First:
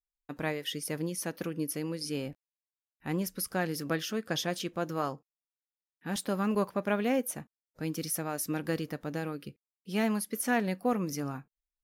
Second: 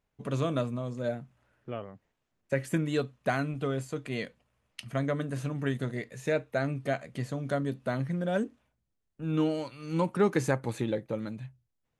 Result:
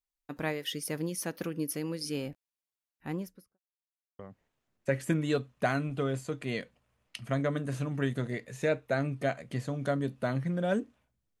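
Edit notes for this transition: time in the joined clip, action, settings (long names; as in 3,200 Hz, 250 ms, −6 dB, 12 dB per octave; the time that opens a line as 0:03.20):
first
0:02.88–0:03.59: fade out and dull
0:03.59–0:04.19: silence
0:04.19: continue with second from 0:01.83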